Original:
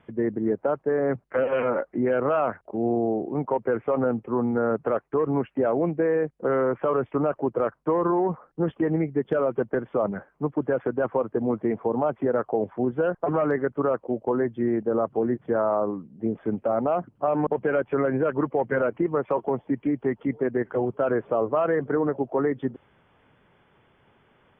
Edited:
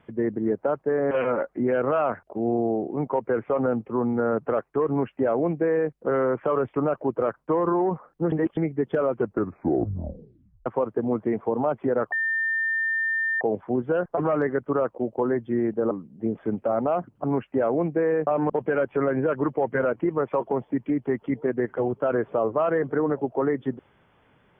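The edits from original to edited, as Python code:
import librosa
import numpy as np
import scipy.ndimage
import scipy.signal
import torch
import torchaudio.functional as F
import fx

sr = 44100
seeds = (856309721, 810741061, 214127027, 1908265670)

y = fx.edit(x, sr, fx.cut(start_s=1.11, length_s=0.38),
    fx.duplicate(start_s=5.27, length_s=1.03, to_s=17.24),
    fx.reverse_span(start_s=8.7, length_s=0.25),
    fx.tape_stop(start_s=9.53, length_s=1.51),
    fx.insert_tone(at_s=12.5, length_s=1.29, hz=1800.0, db=-22.0),
    fx.cut(start_s=15.0, length_s=0.91), tone=tone)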